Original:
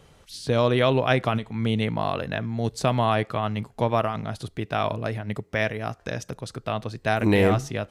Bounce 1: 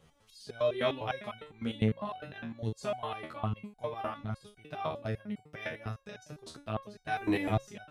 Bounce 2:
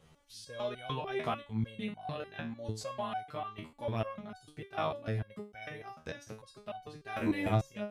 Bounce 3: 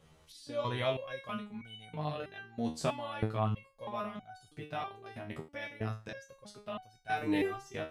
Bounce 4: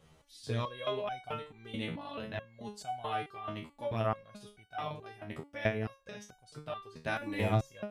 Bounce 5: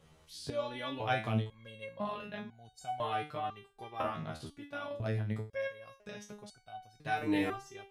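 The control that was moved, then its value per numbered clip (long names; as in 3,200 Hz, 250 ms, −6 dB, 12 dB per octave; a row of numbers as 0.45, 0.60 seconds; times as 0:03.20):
step-sequenced resonator, speed: 9.9, 6.7, 3.1, 4.6, 2 Hertz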